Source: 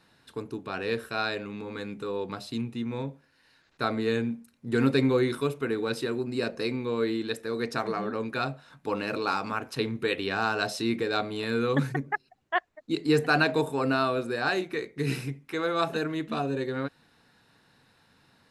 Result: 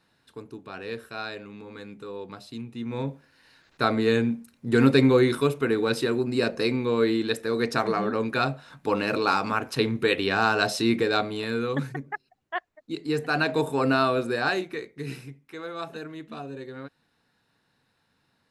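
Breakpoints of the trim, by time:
2.66 s -5 dB
3.09 s +5 dB
11.05 s +5 dB
11.91 s -4 dB
13.21 s -4 dB
13.76 s +3.5 dB
14.36 s +3.5 dB
15.22 s -8 dB

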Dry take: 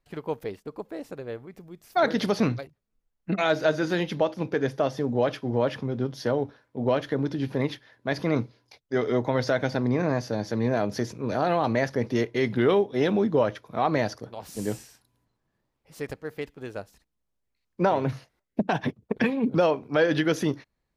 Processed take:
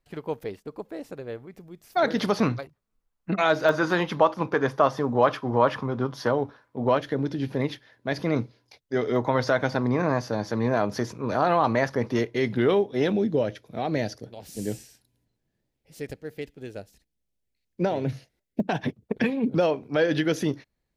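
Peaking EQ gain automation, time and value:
peaking EQ 1.1 kHz 0.86 oct
-1.5 dB
from 2.17 s +6 dB
from 3.69 s +14.5 dB
from 6.29 s +7.5 dB
from 6.98 s -2 dB
from 9.16 s +7 dB
from 12.19 s -2 dB
from 13.12 s -13.5 dB
from 18.60 s -5 dB

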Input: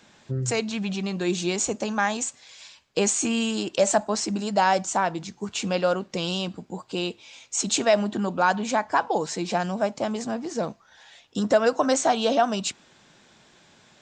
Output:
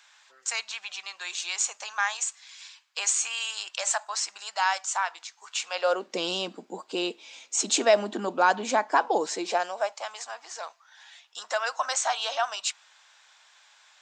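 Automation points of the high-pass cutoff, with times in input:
high-pass 24 dB/octave
5.65 s 970 Hz
6.08 s 270 Hz
9.28 s 270 Hz
10.05 s 860 Hz

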